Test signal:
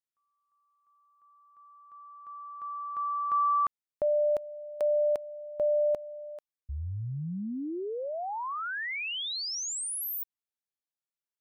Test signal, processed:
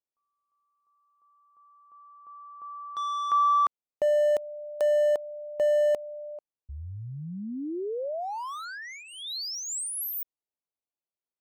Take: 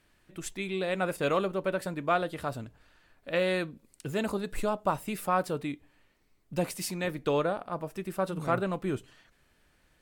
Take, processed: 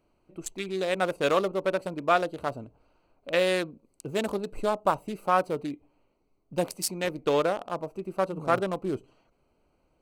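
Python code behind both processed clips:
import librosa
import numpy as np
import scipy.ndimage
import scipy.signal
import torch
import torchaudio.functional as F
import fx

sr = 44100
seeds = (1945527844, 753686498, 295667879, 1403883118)

y = fx.wiener(x, sr, points=25)
y = fx.bass_treble(y, sr, bass_db=-8, treble_db=7)
y = y * librosa.db_to_amplitude(4.5)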